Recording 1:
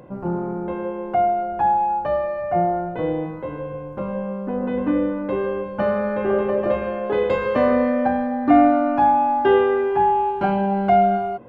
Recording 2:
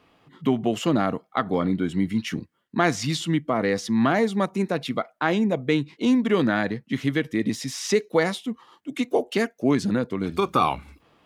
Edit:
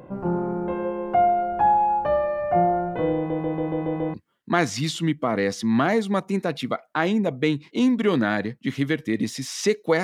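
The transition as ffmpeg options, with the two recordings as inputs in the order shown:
-filter_complex "[0:a]apad=whole_dur=10.03,atrim=end=10.03,asplit=7[a][b][c][d][e][f][g];[a]atrim=end=3.302[h];[b]atrim=start=3.158:end=3.302[i];[c]atrim=start=3.158:end=3.302[j];[d]atrim=start=3.158:end=3.302[k];[e]atrim=start=3.158:end=3.302[l];[f]atrim=start=3.158:end=3.302[m];[g]atrim=start=3.158:end=3.302[n];[1:a]atrim=start=2.398:end=8.29[o];[h][i]acrossfade=d=0.004:c1=hsin:c2=hsin[p];[p][j]acrossfade=d=0.004:c1=hsin:c2=hsin[q];[q][k]acrossfade=d=0.004:c1=hsin:c2=hsin[r];[r][l]acrossfade=d=0.004:c1=hsin:c2=hsin[s];[s][m]acrossfade=d=0.004:c1=hsin:c2=hsin[t];[t][n]acrossfade=d=0.004:c1=hsin:c2=hsin[u];[u][o]acrossfade=d=0.004:c1=hsin:c2=hsin"

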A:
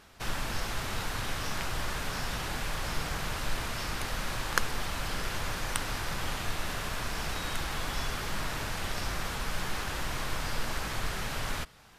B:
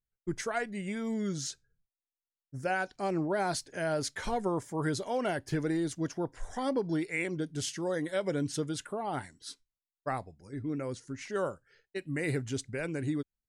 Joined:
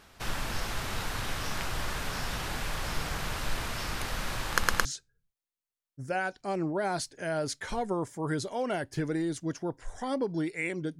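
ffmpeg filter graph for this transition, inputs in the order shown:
-filter_complex "[0:a]apad=whole_dur=10.99,atrim=end=10.99,asplit=3[a][b][c];[a]atrim=end=4.632[d];[b]atrim=start=4.518:end=4.632[e];[c]atrim=start=4.518:end=4.632[f];[1:a]atrim=start=1.398:end=7.54[g];[d][e]acrossfade=d=0.004:c1=hsin:c2=hsin[h];[h][f]acrossfade=d=0.004:c1=hsin:c2=hsin[i];[i][g]acrossfade=d=0.004:c1=hsin:c2=hsin"

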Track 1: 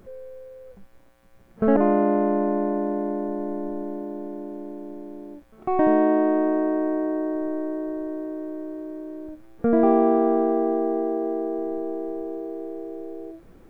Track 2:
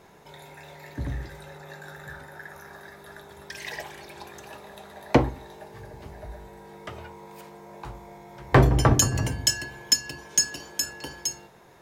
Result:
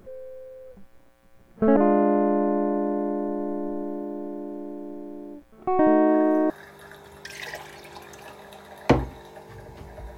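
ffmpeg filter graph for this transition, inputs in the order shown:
-filter_complex "[1:a]asplit=2[a][b];[0:a]apad=whole_dur=10.17,atrim=end=10.17,atrim=end=6.502[c];[b]atrim=start=2.748:end=6.42[d];[a]atrim=start=2.32:end=2.75,asetpts=PTS-STARTPTS,volume=-9.5dB,afade=t=in:d=0.004:c=hsin,afade=t=out:st=0.426:d=0.004:c=hsin,adelay=6070[e];[c][d]acrossfade=d=0.004:c1=hsin:c2=hsin[f];[f][e]amix=inputs=2:normalize=0"

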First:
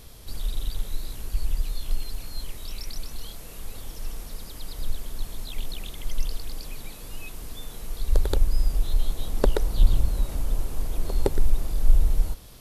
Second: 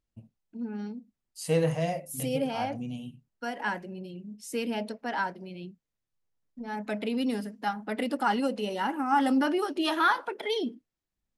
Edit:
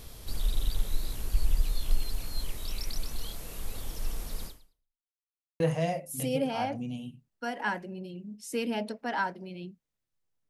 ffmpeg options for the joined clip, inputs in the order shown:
-filter_complex "[0:a]apad=whole_dur=10.49,atrim=end=10.49,asplit=2[a][b];[a]atrim=end=5.13,asetpts=PTS-STARTPTS,afade=t=out:st=4.46:d=0.67:c=exp[c];[b]atrim=start=5.13:end=5.6,asetpts=PTS-STARTPTS,volume=0[d];[1:a]atrim=start=1.6:end=6.49,asetpts=PTS-STARTPTS,afade=t=in:d=0.004:c=hsin[e];[c][d][e]concat=n=3:v=0:a=1"

